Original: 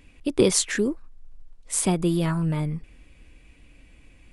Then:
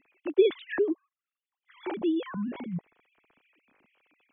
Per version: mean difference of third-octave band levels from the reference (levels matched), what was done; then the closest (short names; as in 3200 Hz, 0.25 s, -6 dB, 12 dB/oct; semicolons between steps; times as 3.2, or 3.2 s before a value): 12.0 dB: sine-wave speech; gain -5 dB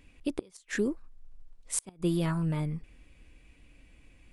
6.0 dB: flipped gate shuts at -10 dBFS, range -32 dB; gain -5 dB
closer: second